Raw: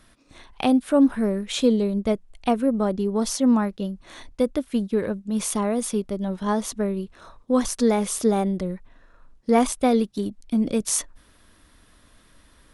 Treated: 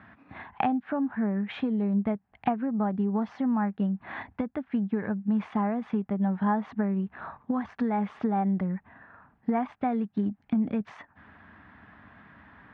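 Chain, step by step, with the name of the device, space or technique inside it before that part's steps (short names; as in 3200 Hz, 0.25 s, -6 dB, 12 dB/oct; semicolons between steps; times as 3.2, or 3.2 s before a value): bass amplifier (compressor 5:1, threshold -32 dBFS, peak gain reduction 17 dB; speaker cabinet 81–2200 Hz, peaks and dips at 200 Hz +4 dB, 350 Hz -7 dB, 520 Hz -10 dB, 800 Hz +8 dB, 1700 Hz +5 dB); gain +6 dB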